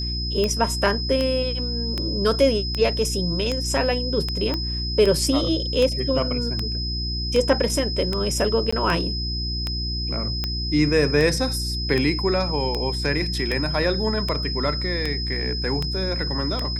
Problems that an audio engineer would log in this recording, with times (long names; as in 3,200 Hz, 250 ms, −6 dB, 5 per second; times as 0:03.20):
mains hum 60 Hz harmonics 6 −28 dBFS
scratch tick 78 rpm −11 dBFS
whistle 5,100 Hz −28 dBFS
0:04.54: click −13 dBFS
0:08.71–0:08.72: drop-out 15 ms